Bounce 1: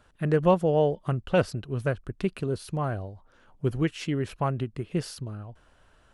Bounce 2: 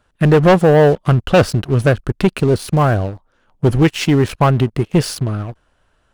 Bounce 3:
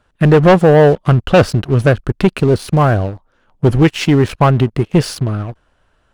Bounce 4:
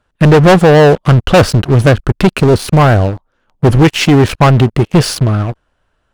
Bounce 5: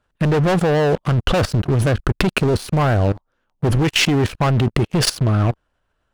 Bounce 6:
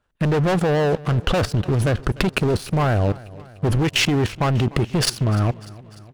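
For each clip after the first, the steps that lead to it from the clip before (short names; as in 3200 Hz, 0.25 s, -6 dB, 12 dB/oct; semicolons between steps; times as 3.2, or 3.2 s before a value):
sample leveller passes 3; gain +5 dB
high shelf 6900 Hz -6 dB; gain +2 dB
sample leveller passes 2
level quantiser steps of 18 dB; gain +2.5 dB
feedback echo 0.298 s, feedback 59%, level -20.5 dB; gain -2.5 dB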